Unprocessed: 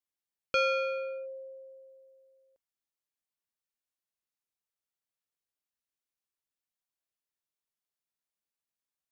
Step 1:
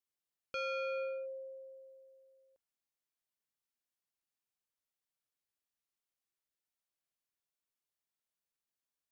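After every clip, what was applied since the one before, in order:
brickwall limiter −32 dBFS, peak gain reduction 10.5 dB
level −2 dB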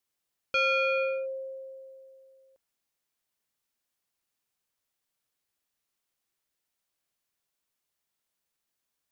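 dynamic equaliser 2,500 Hz, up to +7 dB, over −55 dBFS, Q 0.91
level +8.5 dB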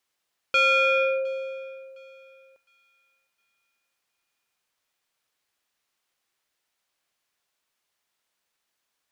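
mid-hump overdrive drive 7 dB, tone 4,200 Hz, clips at −18.5 dBFS
feedback echo with a high-pass in the loop 710 ms, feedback 33%, high-pass 970 Hz, level −22.5 dB
level +5.5 dB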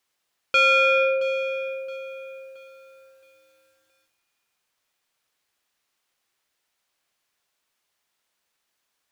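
feedback echo at a low word length 671 ms, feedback 35%, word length 9 bits, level −15 dB
level +2.5 dB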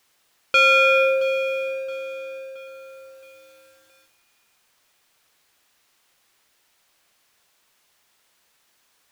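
mu-law and A-law mismatch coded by mu
level +2 dB

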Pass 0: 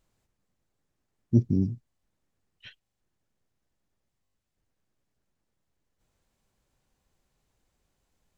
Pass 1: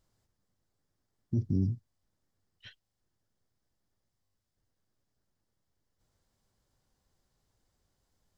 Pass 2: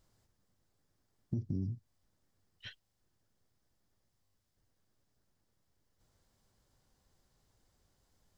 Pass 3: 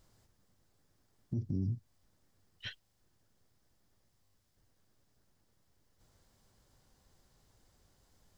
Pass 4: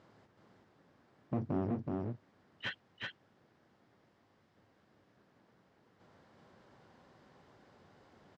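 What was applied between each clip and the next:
thirty-one-band graphic EQ 100 Hz +6 dB, 2,500 Hz −7 dB, 5,000 Hz +5 dB; brickwall limiter −18.5 dBFS, peak gain reduction 10.5 dB; level −2 dB
downward compressor 6 to 1, threshold −36 dBFS, peak gain reduction 11.5 dB; level +3 dB
brickwall limiter −32 dBFS, peak gain reduction 8 dB; level +5 dB
asymmetric clip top −46 dBFS, bottom −33 dBFS; band-pass filter 180–2,200 Hz; single-tap delay 374 ms −3 dB; level +11 dB

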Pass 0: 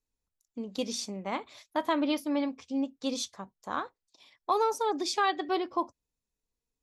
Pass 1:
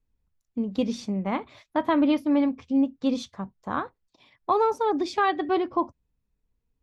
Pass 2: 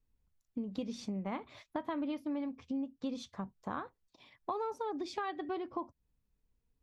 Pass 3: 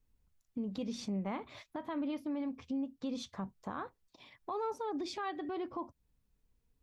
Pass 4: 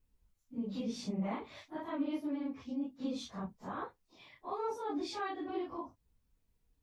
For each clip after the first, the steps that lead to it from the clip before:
bass and treble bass +11 dB, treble −15 dB; level +4 dB
downward compressor 4 to 1, threshold −34 dBFS, peak gain reduction 13.5 dB; level −2.5 dB
brickwall limiter −33 dBFS, peak gain reduction 9.5 dB; level +3 dB
random phases in long frames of 100 ms

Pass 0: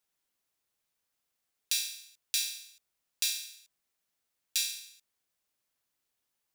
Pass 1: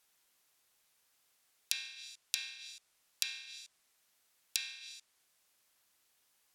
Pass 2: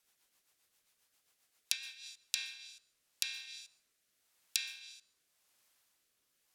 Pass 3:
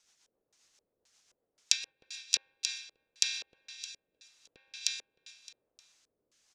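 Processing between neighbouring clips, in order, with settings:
low-shelf EQ 500 Hz −7.5 dB; treble cut that deepens with the level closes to 2,000 Hz, closed at −33 dBFS; downward compressor 1.5 to 1, threshold −54 dBFS, peak gain reduction 8.5 dB; level +10.5 dB
rotating-speaker cabinet horn 7.5 Hz, later 0.9 Hz, at 0:01.57; on a send at −19 dB: convolution reverb RT60 0.70 s, pre-delay 113 ms; on the sum: level +1 dB
repeating echo 308 ms, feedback 31%, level −5.5 dB; auto-filter low-pass square 1.9 Hz 480–6,300 Hz; level +3.5 dB

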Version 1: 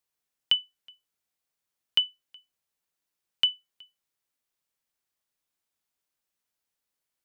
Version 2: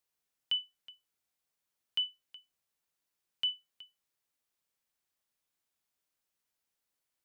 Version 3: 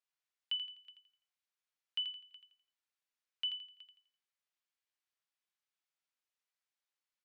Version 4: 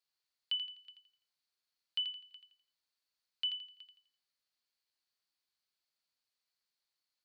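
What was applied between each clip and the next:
brickwall limiter −23.5 dBFS, peak gain reduction 11.5 dB; level −1 dB
resonant band-pass 2,200 Hz, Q 0.55; on a send: repeating echo 84 ms, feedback 35%, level −8 dB; on the sum: level −4.5 dB
parametric band 4,400 Hz +13.5 dB 0.35 octaves

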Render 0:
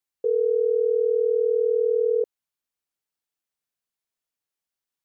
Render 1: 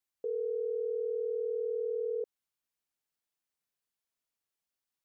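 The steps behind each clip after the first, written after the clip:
brickwall limiter −26.5 dBFS, peak gain reduction 11 dB
level −2 dB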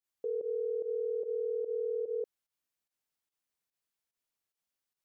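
fake sidechain pumping 146 BPM, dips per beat 1, −16 dB, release 88 ms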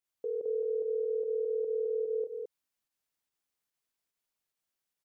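single-tap delay 216 ms −4.5 dB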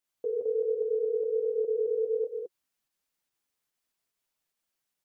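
flanger 1.3 Hz, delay 3.1 ms, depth 7.9 ms, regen −28%
level +7 dB

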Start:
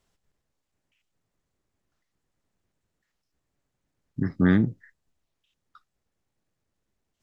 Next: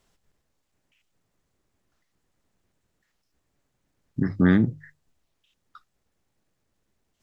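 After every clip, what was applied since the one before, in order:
mains-hum notches 50/100/150 Hz
in parallel at −2 dB: downward compressor, threshold −29 dBFS, peak gain reduction 13.5 dB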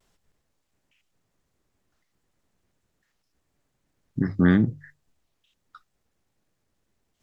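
pitch vibrato 0.59 Hz 33 cents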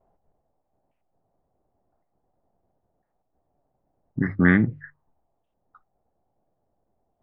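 envelope-controlled low-pass 730–2,100 Hz up, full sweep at −21.5 dBFS

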